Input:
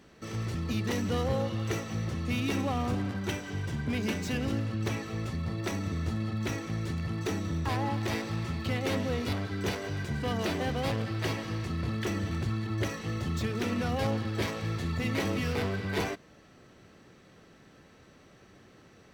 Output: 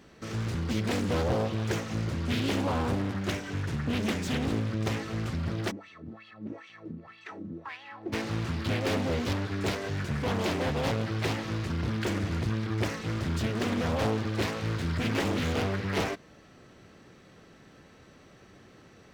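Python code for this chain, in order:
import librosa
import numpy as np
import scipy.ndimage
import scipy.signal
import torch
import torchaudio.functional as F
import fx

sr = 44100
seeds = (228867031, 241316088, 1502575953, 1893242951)

y = fx.wah_lfo(x, sr, hz=fx.line((5.7, 3.1), (8.12, 1.3)), low_hz=220.0, high_hz=3100.0, q=3.6, at=(5.7, 8.12), fade=0.02)
y = fx.doppler_dist(y, sr, depth_ms=0.73)
y = F.gain(torch.from_numpy(y), 2.0).numpy()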